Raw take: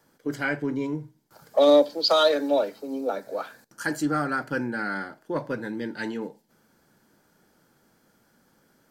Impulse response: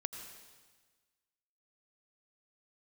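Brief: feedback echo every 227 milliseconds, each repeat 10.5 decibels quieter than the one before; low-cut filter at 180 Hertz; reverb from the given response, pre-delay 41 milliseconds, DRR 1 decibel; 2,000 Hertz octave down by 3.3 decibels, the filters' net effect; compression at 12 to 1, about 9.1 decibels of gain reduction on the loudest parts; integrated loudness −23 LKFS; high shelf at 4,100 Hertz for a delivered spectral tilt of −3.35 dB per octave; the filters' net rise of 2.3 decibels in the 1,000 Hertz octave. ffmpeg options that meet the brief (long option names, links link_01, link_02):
-filter_complex "[0:a]highpass=180,equalizer=frequency=1000:width_type=o:gain=6.5,equalizer=frequency=2000:width_type=o:gain=-7.5,highshelf=frequency=4100:gain=-8,acompressor=threshold=-21dB:ratio=12,aecho=1:1:227|454|681:0.299|0.0896|0.0269,asplit=2[link_01][link_02];[1:a]atrim=start_sample=2205,adelay=41[link_03];[link_02][link_03]afir=irnorm=-1:irlink=0,volume=-0.5dB[link_04];[link_01][link_04]amix=inputs=2:normalize=0,volume=3.5dB"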